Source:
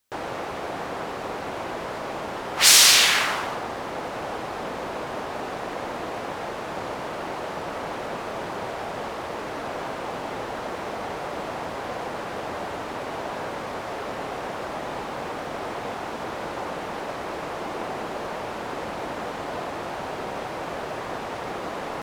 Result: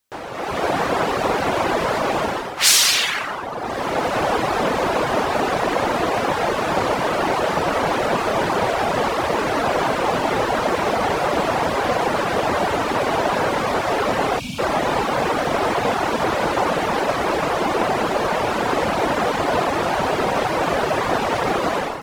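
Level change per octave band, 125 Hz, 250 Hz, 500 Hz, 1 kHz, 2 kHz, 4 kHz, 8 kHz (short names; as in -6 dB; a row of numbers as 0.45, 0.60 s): +11.0, +11.0, +11.0, +10.5, +6.5, +0.5, -0.5 dB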